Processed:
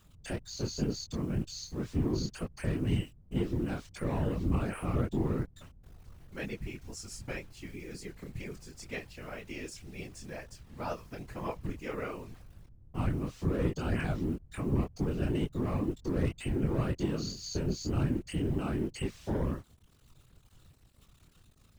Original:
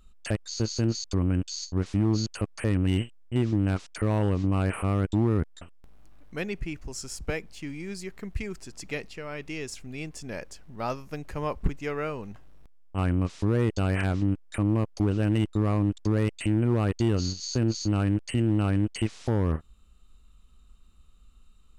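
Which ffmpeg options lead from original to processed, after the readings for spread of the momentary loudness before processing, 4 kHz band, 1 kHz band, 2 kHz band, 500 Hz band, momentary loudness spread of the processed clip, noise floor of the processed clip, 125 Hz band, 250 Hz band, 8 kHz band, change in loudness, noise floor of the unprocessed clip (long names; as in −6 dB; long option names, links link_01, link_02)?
12 LU, −6.5 dB, −6.0 dB, −6.0 dB, −5.5 dB, 13 LU, −62 dBFS, −7.5 dB, −6.5 dB, −7.0 dB, −6.5 dB, −54 dBFS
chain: -af "acrusher=bits=8:mix=0:aa=0.000001,flanger=delay=20:depth=7.5:speed=2,afftfilt=real='hypot(re,im)*cos(2*PI*random(0))':imag='hypot(re,im)*sin(2*PI*random(1))':win_size=512:overlap=0.75,volume=2.5dB"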